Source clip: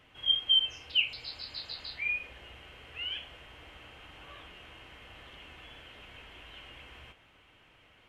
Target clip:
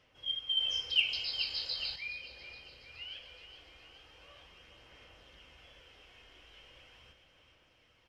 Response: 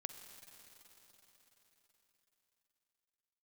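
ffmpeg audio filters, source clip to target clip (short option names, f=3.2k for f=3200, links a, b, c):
-filter_complex "[0:a]equalizer=f=5.3k:t=o:w=0.49:g=13.5,bandreject=f=68.29:t=h:w=4,bandreject=f=136.58:t=h:w=4,bandreject=f=204.87:t=h:w=4,bandreject=f=273.16:t=h:w=4,bandreject=f=341.45:t=h:w=4,bandreject=f=409.74:t=h:w=4,bandreject=f=478.03:t=h:w=4,bandreject=f=546.32:t=h:w=4,bandreject=f=614.61:t=h:w=4,bandreject=f=682.9:t=h:w=4,bandreject=f=751.19:t=h:w=4,bandreject=f=819.48:t=h:w=4,bandreject=f=887.77:t=h:w=4,bandreject=f=956.06:t=h:w=4,bandreject=f=1.02435k:t=h:w=4,bandreject=f=1.09264k:t=h:w=4,bandreject=f=1.16093k:t=h:w=4,bandreject=f=1.22922k:t=h:w=4,bandreject=f=1.29751k:t=h:w=4,bandreject=f=1.3658k:t=h:w=4,bandreject=f=1.43409k:t=h:w=4,bandreject=f=1.50238k:t=h:w=4,bandreject=f=1.57067k:t=h:w=4,bandreject=f=1.63896k:t=h:w=4,bandreject=f=1.70725k:t=h:w=4,bandreject=f=1.77554k:t=h:w=4,bandreject=f=1.84383k:t=h:w=4[a];[1:a]atrim=start_sample=2205,afade=t=out:st=0.32:d=0.01,atrim=end_sample=14553[b];[a][b]afir=irnorm=-1:irlink=0,aphaser=in_gain=1:out_gain=1:delay=2.8:decay=0.29:speed=0.4:type=sinusoidal,equalizer=f=530:t=o:w=0.29:g=7.5,aecho=1:1:420|840|1260|1680|2100|2520|2940:0.299|0.173|0.1|0.0582|0.0338|0.0196|0.0114,asettb=1/sr,asplit=3[c][d][e];[c]atrim=end=0.604[f];[d]atrim=start=0.6:end=1.96,asetpts=PTS-STARTPTS,afade=t=in:d=0.004:c=qsin,afade=t=out:st=1.356:d=0.004:c=qsin,acontrast=74[g];[e]atrim=start=1.956[h];[f][g]acrossfade=d=0.004:c1=hsin:c2=qsin[i];[i][h]acrossfade=d=0.004:c1=qsin:c2=hsin,volume=-6.5dB"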